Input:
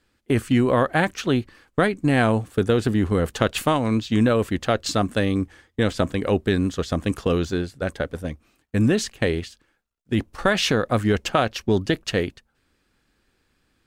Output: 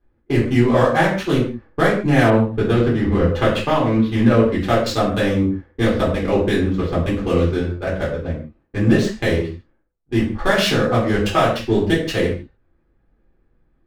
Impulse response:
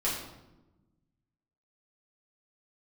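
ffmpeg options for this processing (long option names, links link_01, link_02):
-filter_complex "[0:a]adynamicsmooth=sensitivity=4.5:basefreq=1100[link_01];[1:a]atrim=start_sample=2205,afade=type=out:start_time=0.38:duration=0.01,atrim=end_sample=17199,asetrate=79380,aresample=44100[link_02];[link_01][link_02]afir=irnorm=-1:irlink=0,asettb=1/sr,asplit=3[link_03][link_04][link_05];[link_03]atrim=end=2.304[link_06];[link_04]atrim=start=2.3:end=4.61,asetpts=PTS-STARTPTS,afade=type=in:duration=0.004:curve=qsin,afade=type=out:start_time=2.306:duration=0.004:curve=qsin,adynamicequalizer=threshold=0.00794:dfrequency=4600:dqfactor=0.7:tfrequency=4600:tqfactor=0.7:attack=5:release=100:ratio=0.375:range=3.5:mode=cutabove:tftype=highshelf[link_07];[link_05]atrim=start=4.606[link_08];[link_06][link_07]acrossfade=duration=0.004:curve1=hsin:curve2=qsin[link_09];[link_09][link_08]acrossfade=duration=0.004:curve1=qsin:curve2=hsin,volume=1dB"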